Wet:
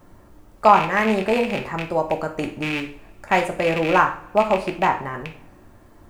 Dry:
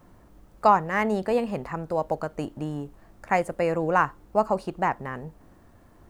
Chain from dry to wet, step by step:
loose part that buzzes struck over −33 dBFS, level −19 dBFS
coupled-rooms reverb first 0.43 s, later 1.7 s, from −24 dB, DRR 3 dB
level +3.5 dB

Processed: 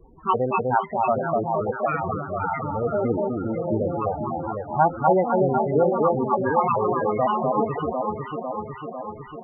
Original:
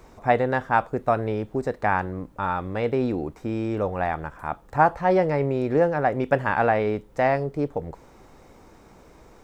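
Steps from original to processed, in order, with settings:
pitch shifter gated in a rhythm +7.5 semitones, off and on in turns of 169 ms
delay that swaps between a low-pass and a high-pass 250 ms, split 1,200 Hz, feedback 81%, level −2 dB
spectral peaks only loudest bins 16

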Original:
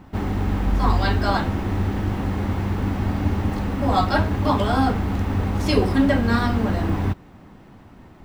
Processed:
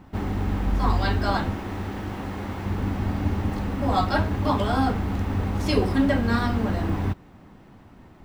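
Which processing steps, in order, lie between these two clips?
0:01.54–0:02.66: low-shelf EQ 230 Hz −8 dB
level −3 dB

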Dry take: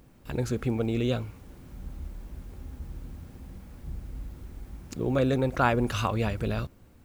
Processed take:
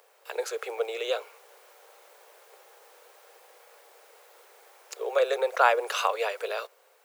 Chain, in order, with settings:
Butterworth high-pass 430 Hz 72 dB per octave
level +4 dB

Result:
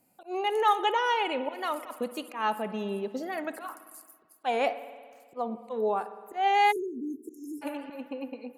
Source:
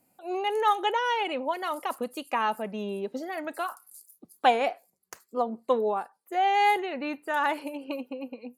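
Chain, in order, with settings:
volume swells 143 ms
spring reverb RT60 1.7 s, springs 55 ms, chirp 75 ms, DRR 12.5 dB
time-frequency box erased 0:06.72–0:07.62, 460–5,100 Hz

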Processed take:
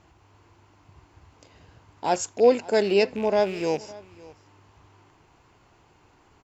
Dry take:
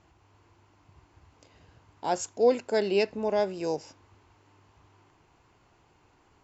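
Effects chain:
loose part that buzzes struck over −42 dBFS, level −34 dBFS
on a send: single-tap delay 559 ms −21.5 dB
on the sum: level +4.5 dB

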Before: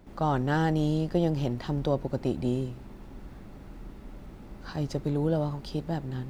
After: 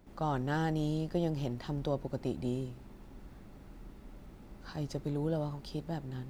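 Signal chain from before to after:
high-shelf EQ 5,200 Hz +4 dB
level −6.5 dB

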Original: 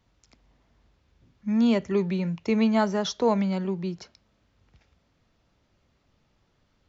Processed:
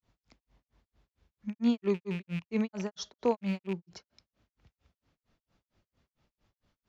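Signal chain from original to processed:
loose part that buzzes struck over −32 dBFS, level −28 dBFS
granular cloud 187 ms, grains 4.4 per second, pitch spread up and down by 0 semitones
level −3 dB

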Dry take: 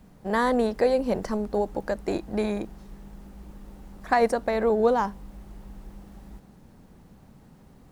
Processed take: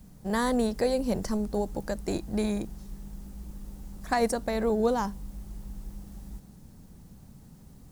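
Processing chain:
bass and treble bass +9 dB, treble +13 dB
level −5.5 dB

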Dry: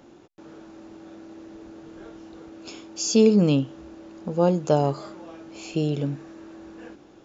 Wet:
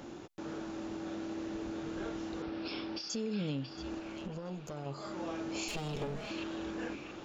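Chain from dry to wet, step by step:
0:05.68–0:06.31: lower of the sound and its delayed copy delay 4.8 ms
parametric band 450 Hz −2.5 dB 2 octaves
downward compressor 6 to 1, threshold −37 dBFS, peak gain reduction 21 dB
brickwall limiter −34.5 dBFS, peak gain reduction 10 dB
0:02.42–0:03.10: Butterworth low-pass 5,500 Hz 96 dB per octave
0:03.99–0:04.86: tube saturation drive 38 dB, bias 0.7
on a send: echo through a band-pass that steps 678 ms, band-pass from 3,000 Hz, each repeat −0.7 octaves, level −3.5 dB
on the sum: level +5.5 dB

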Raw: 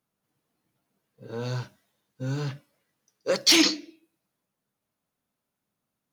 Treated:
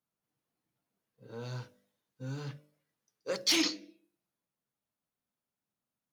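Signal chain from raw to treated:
hum removal 49.78 Hz, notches 13
level −9 dB

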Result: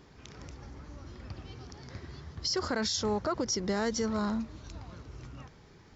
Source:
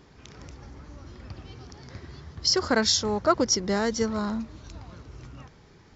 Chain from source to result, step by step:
brickwall limiter −20 dBFS, peak gain reduction 11 dB
level −2 dB

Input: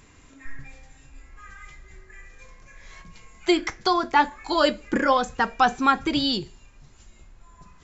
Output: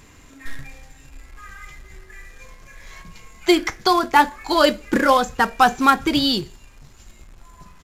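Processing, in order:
in parallel at −3.5 dB: log-companded quantiser 4 bits
on the sum: downsampling to 32,000 Hz

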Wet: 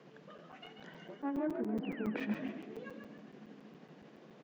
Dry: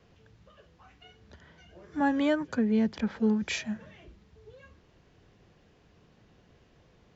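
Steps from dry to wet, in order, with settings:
phase distortion by the signal itself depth 0.15 ms
treble cut that deepens with the level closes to 1,200 Hz, closed at −27 dBFS
elliptic high-pass filter 150 Hz
high-shelf EQ 3,600 Hz −9.5 dB
reversed playback
downward compressor 20 to 1, threshold −39 dBFS, peak gain reduction 18 dB
reversed playback
time stretch by overlap-add 0.62×, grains 160 ms
sound drawn into the spectrogram fall, 0:01.83–0:02.10, 1,100–3,100 Hz −59 dBFS
echo with shifted repeats 138 ms, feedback 41%, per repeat +51 Hz, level −7 dB
on a send at −13 dB: convolution reverb RT60 2.9 s, pre-delay 3 ms
on the sum: regular buffer underruns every 0.14 s, samples 256, zero, from 0:00.38
level +7 dB

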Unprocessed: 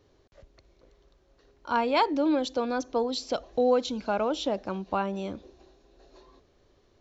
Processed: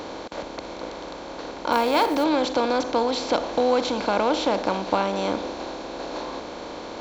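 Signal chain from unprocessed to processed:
compressor on every frequency bin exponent 0.4
0:01.72–0:02.24: log-companded quantiser 6 bits

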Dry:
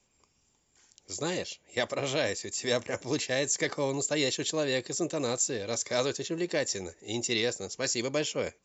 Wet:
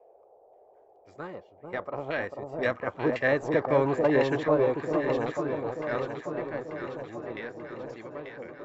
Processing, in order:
source passing by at 0:03.81, 8 m/s, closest 5.9 metres
in parallel at −7.5 dB: centre clipping without the shift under −34 dBFS
on the sum: auto-filter low-pass saw down 1.9 Hz 780–1,900 Hz
delay that swaps between a low-pass and a high-pass 444 ms, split 970 Hz, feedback 74%, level −3.5 dB
noise in a band 390–780 Hz −60 dBFS
level +2 dB

